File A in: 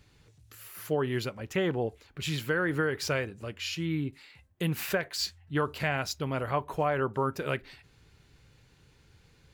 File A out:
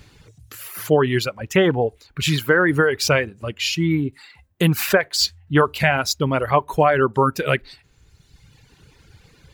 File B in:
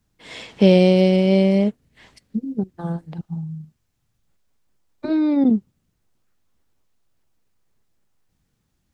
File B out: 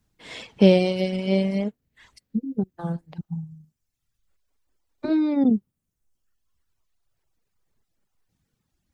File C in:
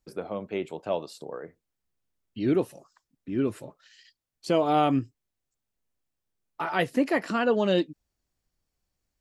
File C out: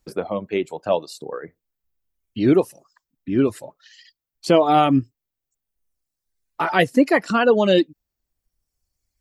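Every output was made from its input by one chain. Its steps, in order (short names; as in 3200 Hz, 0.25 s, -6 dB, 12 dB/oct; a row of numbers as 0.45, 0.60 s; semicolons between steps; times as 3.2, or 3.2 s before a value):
reverb removal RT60 1.5 s; normalise peaks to -3 dBFS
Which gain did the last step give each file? +13.0, -1.0, +9.0 dB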